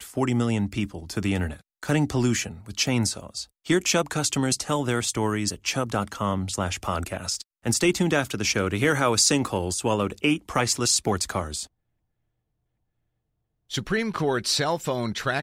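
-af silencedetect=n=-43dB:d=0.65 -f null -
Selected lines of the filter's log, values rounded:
silence_start: 11.66
silence_end: 13.70 | silence_duration: 2.05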